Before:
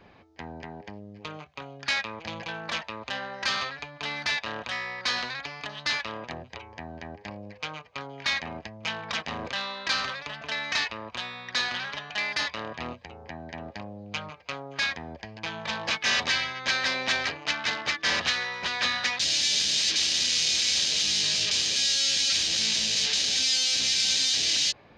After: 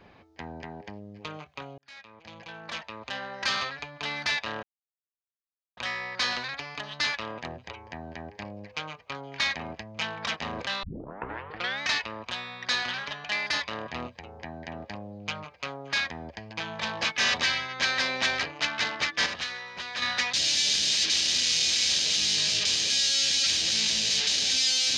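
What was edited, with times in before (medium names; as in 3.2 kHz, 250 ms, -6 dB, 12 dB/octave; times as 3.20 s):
1.78–3.52 s: fade in
4.63 s: insert silence 1.14 s
9.69 s: tape start 0.99 s
18.12–18.88 s: gain -7 dB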